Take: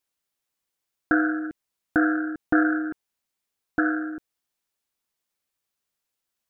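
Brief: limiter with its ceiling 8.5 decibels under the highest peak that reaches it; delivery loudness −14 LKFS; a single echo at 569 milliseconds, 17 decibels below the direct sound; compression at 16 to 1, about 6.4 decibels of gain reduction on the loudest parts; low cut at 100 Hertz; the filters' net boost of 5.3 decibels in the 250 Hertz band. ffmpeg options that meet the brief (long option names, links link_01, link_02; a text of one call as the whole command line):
ffmpeg -i in.wav -af "highpass=100,equalizer=frequency=250:width_type=o:gain=7.5,acompressor=threshold=-18dB:ratio=16,alimiter=limit=-16dB:level=0:latency=1,aecho=1:1:569:0.141,volume=12.5dB" out.wav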